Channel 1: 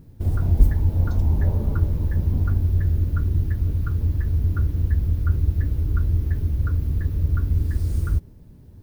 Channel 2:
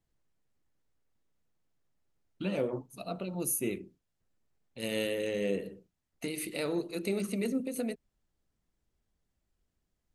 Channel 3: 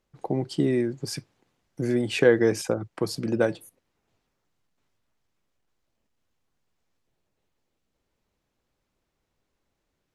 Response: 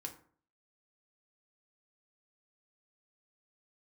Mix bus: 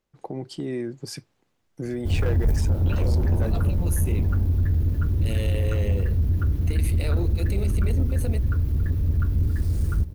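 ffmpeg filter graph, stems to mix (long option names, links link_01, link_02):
-filter_complex "[0:a]adelay=1850,volume=1.5dB,asplit=2[link_01][link_02];[link_02]volume=-17dB[link_03];[1:a]adelay=450,volume=3dB[link_04];[2:a]volume=12.5dB,asoftclip=hard,volume=-12.5dB,volume=-2.5dB[link_05];[link_04][link_05]amix=inputs=2:normalize=0,alimiter=limit=-21dB:level=0:latency=1:release=95,volume=0dB[link_06];[link_03]aecho=0:1:978:1[link_07];[link_01][link_06][link_07]amix=inputs=3:normalize=0,asoftclip=type=tanh:threshold=-15dB"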